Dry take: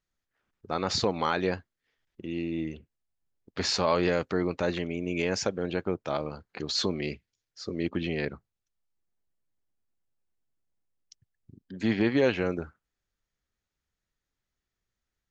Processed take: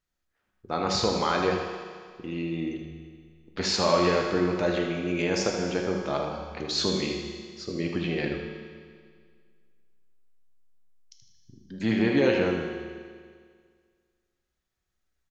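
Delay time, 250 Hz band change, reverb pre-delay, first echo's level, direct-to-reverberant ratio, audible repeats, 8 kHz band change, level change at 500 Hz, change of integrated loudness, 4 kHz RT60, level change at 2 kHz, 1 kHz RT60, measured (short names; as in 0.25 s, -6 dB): 78 ms, +2.5 dB, 5 ms, -8.0 dB, 0.5 dB, 2, +2.5 dB, +3.0 dB, +2.5 dB, 1.9 s, +2.5 dB, 1.9 s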